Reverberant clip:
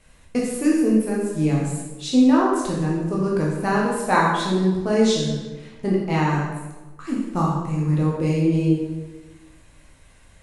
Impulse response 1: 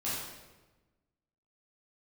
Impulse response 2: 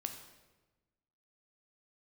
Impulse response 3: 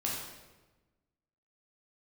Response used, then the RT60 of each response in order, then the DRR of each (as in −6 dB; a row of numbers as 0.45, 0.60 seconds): 3; 1.2, 1.2, 1.2 seconds; −10.0, 5.0, −4.5 decibels